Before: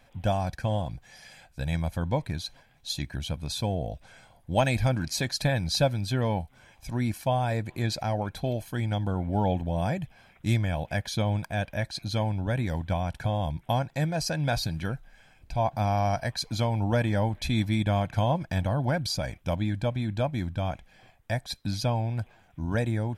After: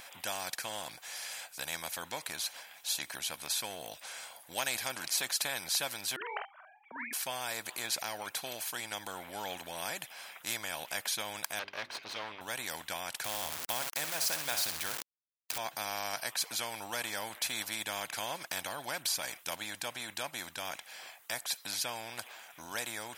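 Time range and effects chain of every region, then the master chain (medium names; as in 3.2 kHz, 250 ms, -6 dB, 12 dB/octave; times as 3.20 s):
6.16–7.13 s: formants replaced by sine waves + level-controlled noise filter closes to 410 Hz, open at -21.5 dBFS + doubling 48 ms -6 dB
11.59–12.41 s: comb filter that takes the minimum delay 1.9 ms + distance through air 290 m + hum notches 50/100/150/200/250/300/350/400 Hz
13.24–15.58 s: peaking EQ 84 Hz +14.5 dB 0.34 oct + feedback delay 63 ms, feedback 28%, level -12.5 dB + small samples zeroed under -37 dBFS
whole clip: high-pass 930 Hz 12 dB/octave; treble shelf 7 kHz +10 dB; spectrum-flattening compressor 2:1; trim -3 dB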